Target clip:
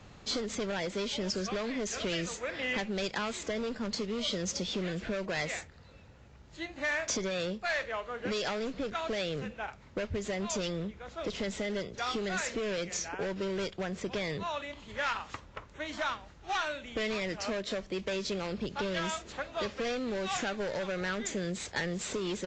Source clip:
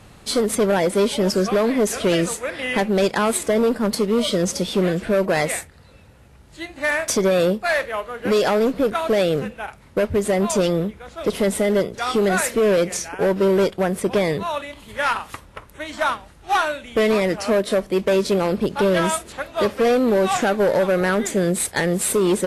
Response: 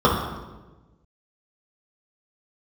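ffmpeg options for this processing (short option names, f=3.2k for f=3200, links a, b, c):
-filter_complex "[0:a]acrossover=split=120|1700[a][b][c];[b]acompressor=threshold=-26dB:ratio=6[d];[a][d][c]amix=inputs=3:normalize=0,asoftclip=type=tanh:threshold=-16dB,aresample=16000,aresample=44100,volume=-6.5dB"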